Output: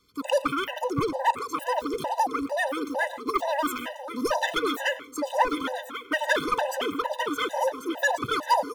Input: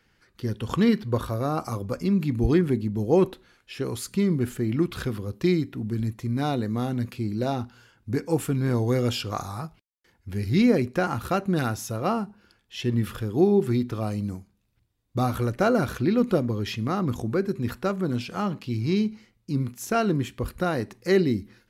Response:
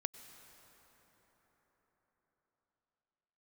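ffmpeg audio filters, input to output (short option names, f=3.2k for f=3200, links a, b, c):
-filter_complex "[0:a]equalizer=f=680:t=o:w=1.9:g=6.5,asetrate=109368,aresample=44100,aecho=1:1:1089|2178|3267|4356:0.355|0.142|0.0568|0.0227[a];[1:a]atrim=start_sample=2205,afade=t=out:st=0.21:d=0.01,atrim=end_sample=9702[b];[a][b]afir=irnorm=-1:irlink=0,aeval=exprs='clip(val(0),-1,0.168)':c=same,afftfilt=real='re*gt(sin(2*PI*2.2*pts/sr)*(1-2*mod(floor(b*sr/1024/510),2)),0)':imag='im*gt(sin(2*PI*2.2*pts/sr)*(1-2*mod(floor(b*sr/1024/510),2)),0)':win_size=1024:overlap=0.75"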